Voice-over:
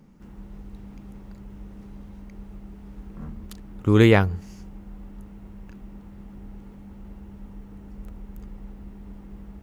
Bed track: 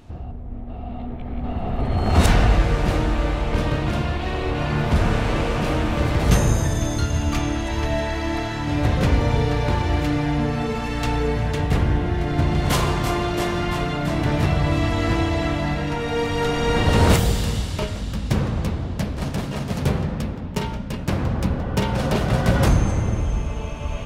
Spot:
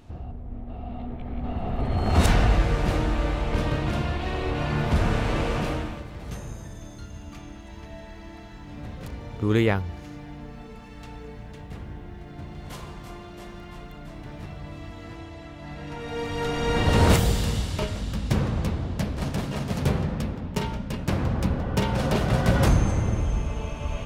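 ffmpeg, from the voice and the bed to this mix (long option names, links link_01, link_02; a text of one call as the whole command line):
ffmpeg -i stem1.wav -i stem2.wav -filter_complex "[0:a]adelay=5550,volume=-6dB[link_01];[1:a]volume=13dB,afade=type=out:start_time=5.57:duration=0.47:silence=0.16788,afade=type=in:start_time=15.55:duration=1.44:silence=0.149624[link_02];[link_01][link_02]amix=inputs=2:normalize=0" out.wav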